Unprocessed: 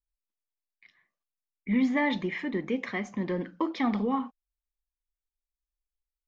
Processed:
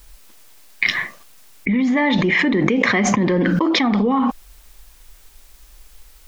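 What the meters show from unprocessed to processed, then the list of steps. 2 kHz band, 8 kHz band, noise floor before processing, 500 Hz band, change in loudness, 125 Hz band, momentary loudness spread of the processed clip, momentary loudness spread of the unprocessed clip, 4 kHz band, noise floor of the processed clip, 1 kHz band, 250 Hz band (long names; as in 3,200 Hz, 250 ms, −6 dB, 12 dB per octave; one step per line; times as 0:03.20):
+15.5 dB, can't be measured, below −85 dBFS, +11.5 dB, +11.5 dB, +15.0 dB, 7 LU, 7 LU, +18.0 dB, −48 dBFS, +11.5 dB, +11.0 dB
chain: envelope flattener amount 100%
level +4.5 dB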